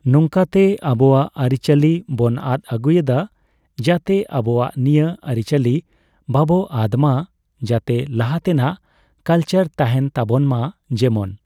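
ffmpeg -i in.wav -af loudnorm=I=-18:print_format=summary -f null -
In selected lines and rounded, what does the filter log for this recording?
Input Integrated:    -18.0 LUFS
Input True Peak:      -2.5 dBTP
Input LRA:             1.9 LU
Input Threshold:     -28.4 LUFS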